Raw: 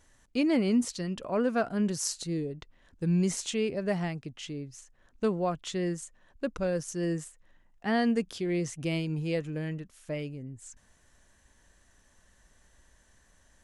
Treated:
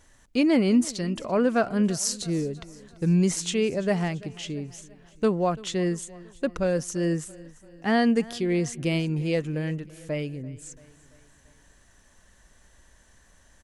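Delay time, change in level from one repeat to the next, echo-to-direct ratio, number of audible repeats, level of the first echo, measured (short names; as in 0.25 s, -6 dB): 0.338 s, -5.0 dB, -19.5 dB, 3, -21.0 dB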